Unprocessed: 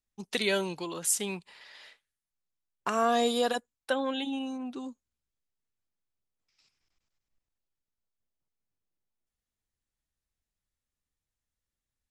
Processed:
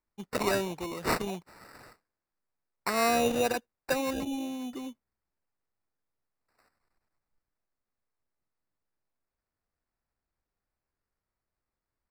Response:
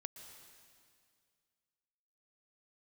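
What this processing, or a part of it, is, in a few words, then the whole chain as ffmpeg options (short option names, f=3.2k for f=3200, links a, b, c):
crushed at another speed: -af "asetrate=35280,aresample=44100,acrusher=samples=17:mix=1:aa=0.000001,asetrate=55125,aresample=44100"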